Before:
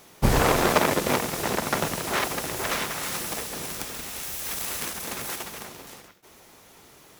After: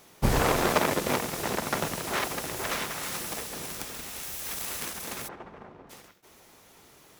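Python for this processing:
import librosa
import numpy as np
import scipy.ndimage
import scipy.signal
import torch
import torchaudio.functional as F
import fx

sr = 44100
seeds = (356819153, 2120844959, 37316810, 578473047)

y = fx.lowpass(x, sr, hz=1200.0, slope=12, at=(5.27, 5.89), fade=0.02)
y = y * 10.0 ** (-3.5 / 20.0)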